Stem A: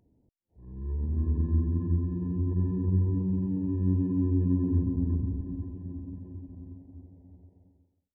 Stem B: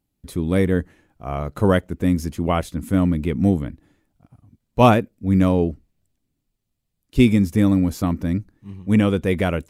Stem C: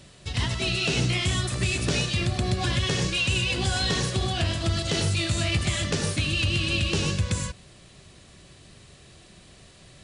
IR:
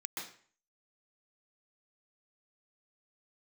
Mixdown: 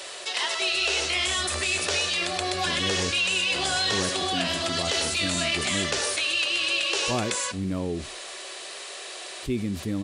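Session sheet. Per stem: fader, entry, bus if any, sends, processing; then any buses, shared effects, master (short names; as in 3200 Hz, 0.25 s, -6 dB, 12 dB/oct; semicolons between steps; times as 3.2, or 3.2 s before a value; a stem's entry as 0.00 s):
-19.0 dB, 0.00 s, no send, dry
-17.5 dB, 2.30 s, no send, dry
+0.5 dB, 0.00 s, no send, HPF 520 Hz 24 dB/oct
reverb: off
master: bell 370 Hz +7 dB 0.28 oct; fast leveller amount 50%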